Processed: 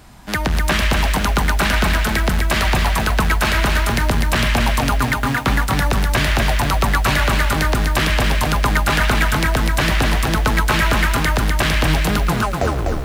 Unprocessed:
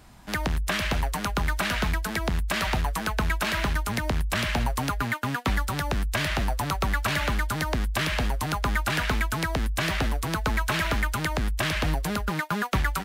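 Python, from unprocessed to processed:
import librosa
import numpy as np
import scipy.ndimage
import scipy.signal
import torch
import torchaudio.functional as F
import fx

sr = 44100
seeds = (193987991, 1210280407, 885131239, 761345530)

y = fx.tape_stop_end(x, sr, length_s=0.86)
y = y + 10.0 ** (-14.0 / 20.0) * np.pad(y, (int(114 * sr / 1000.0), 0))[:len(y)]
y = fx.echo_crushed(y, sr, ms=249, feedback_pct=35, bits=8, wet_db=-3.5)
y = y * librosa.db_to_amplitude(7.5)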